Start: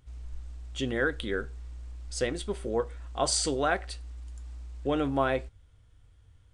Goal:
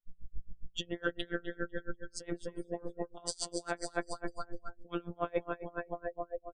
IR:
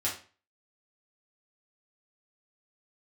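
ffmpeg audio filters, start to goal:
-af "aecho=1:1:250|500|750|1000|1250|1500|1750:0.376|0.218|0.126|0.0733|0.0425|0.0247|0.0143,afftfilt=real='hypot(re,im)*cos(PI*b)':imag='0':win_size=1024:overlap=0.75,afftdn=nr=31:nf=-45,highshelf=f=5k:g=-2.5,areverse,acompressor=threshold=-44dB:ratio=6,areverse,aeval=exprs='val(0)*pow(10,-30*(0.5-0.5*cos(2*PI*7.2*n/s))/20)':c=same,volume=16.5dB"

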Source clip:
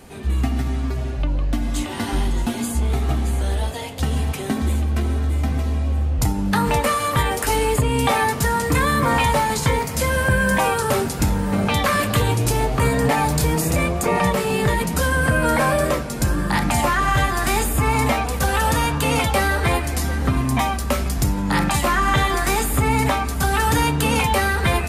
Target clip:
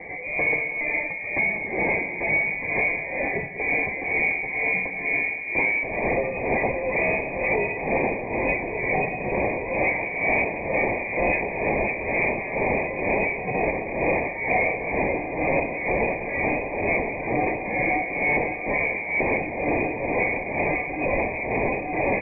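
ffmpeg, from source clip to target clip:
-filter_complex "[0:a]highpass=240,aresample=11025,aeval=exprs='0.422*sin(PI/2*7.94*val(0)/0.422)':c=same,aresample=44100,tremolo=f=1.9:d=0.68,asetrate=49392,aresample=44100,asplit=2[a][b];[b]aecho=0:1:187:0.2[c];[a][c]amix=inputs=2:normalize=0,lowpass=f=2.1k:t=q:w=0.5098,lowpass=f=2.1k:t=q:w=0.6013,lowpass=f=2.1k:t=q:w=0.9,lowpass=f=2.1k:t=q:w=2.563,afreqshift=-2500,asuperstop=centerf=1400:order=4:qfactor=0.61"

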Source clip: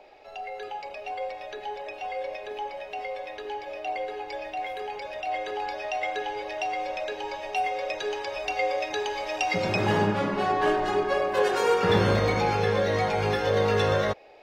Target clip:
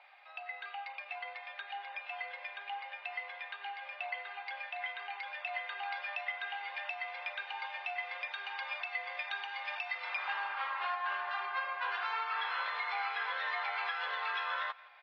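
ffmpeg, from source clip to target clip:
-filter_complex "[0:a]lowpass=3.3k,asplit=2[a][b];[b]aecho=0:1:160|320|480:0.0708|0.029|0.0119[c];[a][c]amix=inputs=2:normalize=0,asetrate=42336,aresample=44100,asuperpass=centerf=2100:order=8:qfactor=0.57,alimiter=level_in=3dB:limit=-24dB:level=0:latency=1:release=462,volume=-3dB,volume=1dB"

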